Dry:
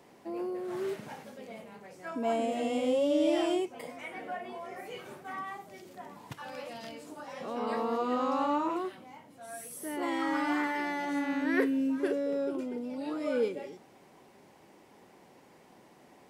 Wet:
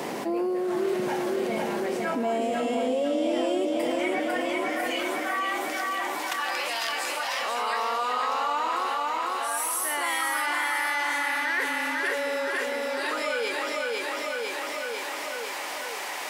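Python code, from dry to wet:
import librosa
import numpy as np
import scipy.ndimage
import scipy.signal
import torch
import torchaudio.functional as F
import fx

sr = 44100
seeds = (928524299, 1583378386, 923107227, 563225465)

y = fx.highpass(x, sr, hz=fx.steps((0.0, 180.0), (4.2, 1200.0)), slope=12)
y = fx.rider(y, sr, range_db=4, speed_s=0.5)
y = fx.echo_feedback(y, sr, ms=500, feedback_pct=55, wet_db=-4.5)
y = fx.env_flatten(y, sr, amount_pct=70)
y = y * librosa.db_to_amplitude(3.5)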